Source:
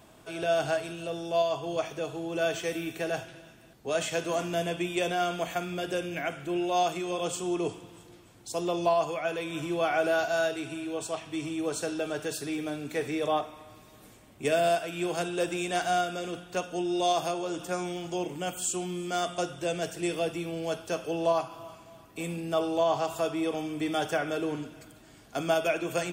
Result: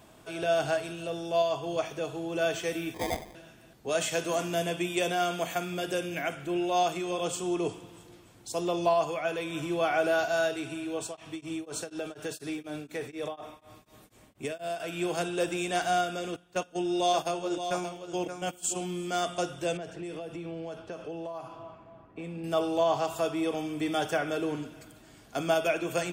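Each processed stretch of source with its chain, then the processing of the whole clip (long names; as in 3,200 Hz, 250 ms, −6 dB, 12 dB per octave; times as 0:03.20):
0:02.94–0:03.35: elliptic high-pass filter 200 Hz + sample-rate reduction 1,400 Hz
0:03.89–0:06.35: high-pass filter 86 Hz + high-shelf EQ 6,100 Hz +5.5 dB
0:11.05–0:14.80: downward compressor, threshold −29 dBFS + tremolo along a rectified sine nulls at 4.1 Hz
0:16.36–0:18.81: noise gate −34 dBFS, range −15 dB + single-tap delay 576 ms −8.5 dB
0:19.77–0:22.44: low-pass that shuts in the quiet parts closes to 1,900 Hz, open at −23.5 dBFS + parametric band 5,000 Hz −6.5 dB 2.6 octaves + downward compressor 12 to 1, threshold −34 dBFS
whole clip: no processing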